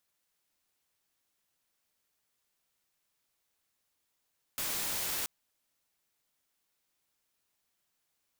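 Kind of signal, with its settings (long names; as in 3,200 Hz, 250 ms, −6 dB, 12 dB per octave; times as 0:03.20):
noise white, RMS −34.5 dBFS 0.68 s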